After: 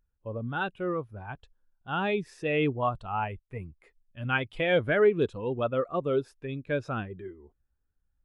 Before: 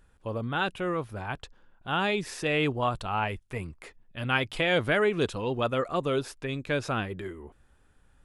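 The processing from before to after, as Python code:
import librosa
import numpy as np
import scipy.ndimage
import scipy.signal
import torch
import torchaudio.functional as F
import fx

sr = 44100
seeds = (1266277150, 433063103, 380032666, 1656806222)

y = fx.spectral_expand(x, sr, expansion=1.5)
y = F.gain(torch.from_numpy(y), -2.5).numpy()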